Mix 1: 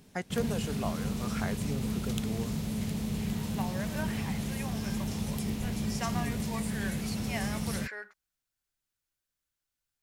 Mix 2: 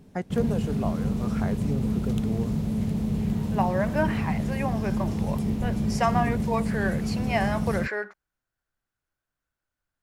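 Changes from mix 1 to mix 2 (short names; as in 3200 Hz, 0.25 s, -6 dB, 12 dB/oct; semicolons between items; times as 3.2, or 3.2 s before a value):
second voice +10.5 dB; master: add tilt shelf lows +7 dB, about 1300 Hz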